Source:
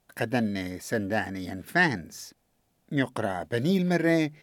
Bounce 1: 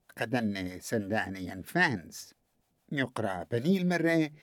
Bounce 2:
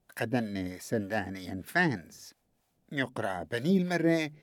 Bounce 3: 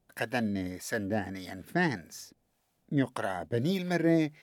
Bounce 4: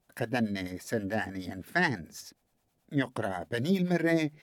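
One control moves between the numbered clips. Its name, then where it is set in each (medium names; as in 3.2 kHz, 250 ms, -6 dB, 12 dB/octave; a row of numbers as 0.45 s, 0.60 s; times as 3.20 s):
harmonic tremolo, rate: 6.2 Hz, 3.2 Hz, 1.7 Hz, 9.4 Hz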